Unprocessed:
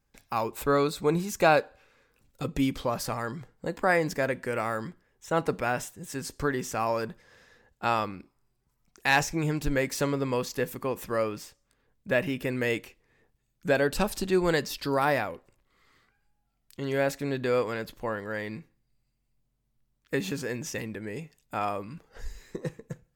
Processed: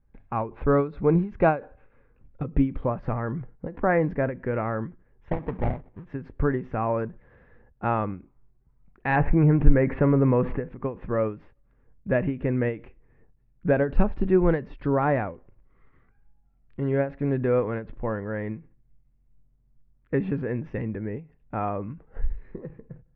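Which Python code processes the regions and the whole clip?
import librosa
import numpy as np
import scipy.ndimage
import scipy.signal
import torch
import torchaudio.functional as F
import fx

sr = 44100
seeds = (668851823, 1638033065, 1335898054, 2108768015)

y = fx.chain(x, sr, fx.lowpass(hz=1800.0, slope=12),
    fx.sample_hold(seeds[0], rate_hz=1400.0, jitter_pct=20), at=(5.31, 6.05))
y = fx.chain(y, sr, fx.lowpass(hz=2500.0, slope=24),
    fx.env_flatten(amount_pct=50), at=(9.16, 10.69))
y = scipy.signal.sosfilt(scipy.signal.butter(4, 2300.0, 'lowpass', fs=sr, output='sos'), y)
y = fx.tilt_eq(y, sr, slope=-3.0)
y = fx.end_taper(y, sr, db_per_s=180.0)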